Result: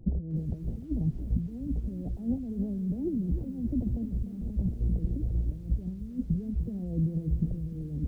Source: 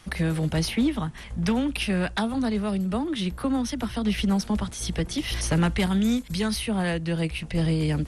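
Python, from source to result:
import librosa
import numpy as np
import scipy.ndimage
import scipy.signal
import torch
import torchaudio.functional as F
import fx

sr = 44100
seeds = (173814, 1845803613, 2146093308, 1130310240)

y = fx.over_compress(x, sr, threshold_db=-30.0, ratio=-0.5)
y = scipy.ndimage.gaussian_filter1d(y, 21.0, mode='constant')
y = fx.echo_crushed(y, sr, ms=300, feedback_pct=35, bits=10, wet_db=-12)
y = F.gain(torch.from_numpy(y), 3.0).numpy()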